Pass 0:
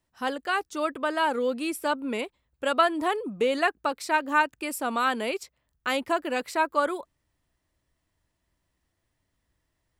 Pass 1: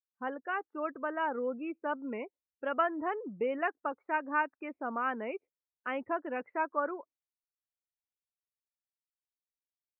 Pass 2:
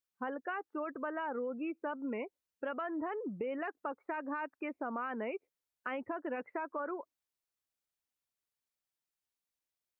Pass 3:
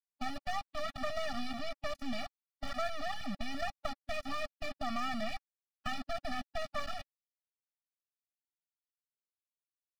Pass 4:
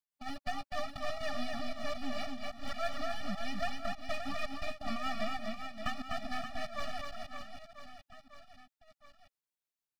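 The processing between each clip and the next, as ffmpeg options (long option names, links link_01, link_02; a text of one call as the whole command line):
ffmpeg -i in.wav -af "lowpass=frequency=2300:width=0.5412,lowpass=frequency=2300:width=1.3066,afftdn=noise_reduction=34:noise_floor=-39,volume=-7.5dB" out.wav
ffmpeg -i in.wav -af "acontrast=77,alimiter=limit=-21.5dB:level=0:latency=1:release=24,acompressor=threshold=-31dB:ratio=6,volume=-3.5dB" out.wav
ffmpeg -i in.wav -af "aresample=11025,acrusher=bits=6:mix=0:aa=0.000001,aresample=44100,aeval=exprs='max(val(0),0)':channel_layout=same,afftfilt=real='re*eq(mod(floor(b*sr/1024/280),2),0)':imag='im*eq(mod(floor(b*sr/1024/280),2),0)':win_size=1024:overlap=0.75,volume=7.5dB" out.wav
ffmpeg -i in.wav -af "tremolo=f=6.3:d=0.74,aecho=1:1:250|575|997.5|1547|2261:0.631|0.398|0.251|0.158|0.1,volume=1.5dB" out.wav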